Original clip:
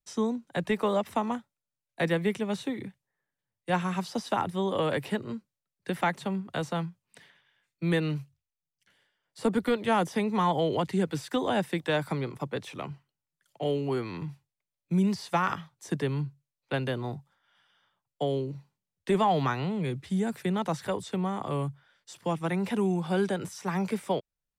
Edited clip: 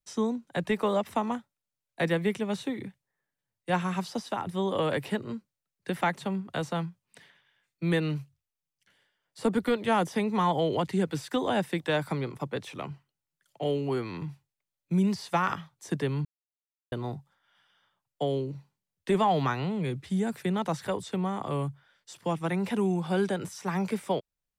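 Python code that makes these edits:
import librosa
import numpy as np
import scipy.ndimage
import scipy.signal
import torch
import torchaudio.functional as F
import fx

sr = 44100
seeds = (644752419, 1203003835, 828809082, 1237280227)

y = fx.edit(x, sr, fx.fade_out_to(start_s=4.07, length_s=0.39, floor_db=-6.5),
    fx.silence(start_s=16.25, length_s=0.67), tone=tone)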